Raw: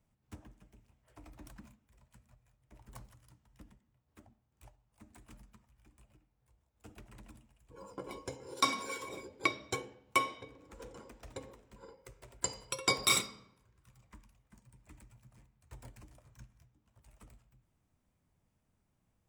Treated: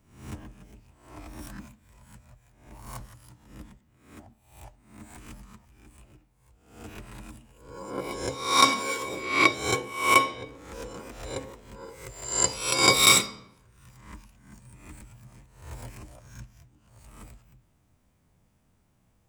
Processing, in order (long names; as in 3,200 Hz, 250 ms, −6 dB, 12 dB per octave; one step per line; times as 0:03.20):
peak hold with a rise ahead of every peak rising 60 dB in 0.59 s
level +8.5 dB